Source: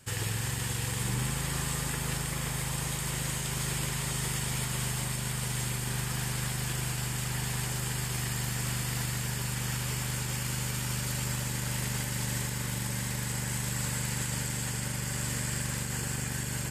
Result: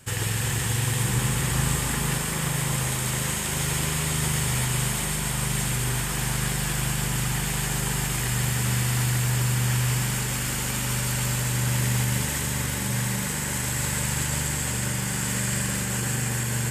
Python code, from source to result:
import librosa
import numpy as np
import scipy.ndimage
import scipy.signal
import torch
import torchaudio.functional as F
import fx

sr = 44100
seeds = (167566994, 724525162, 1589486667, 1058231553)

p1 = fx.peak_eq(x, sr, hz=4700.0, db=-3.5, octaves=0.44)
p2 = p1 + fx.echo_split(p1, sr, split_hz=1500.0, low_ms=340, high_ms=139, feedback_pct=52, wet_db=-5.0, dry=0)
y = F.gain(torch.from_numpy(p2), 5.5).numpy()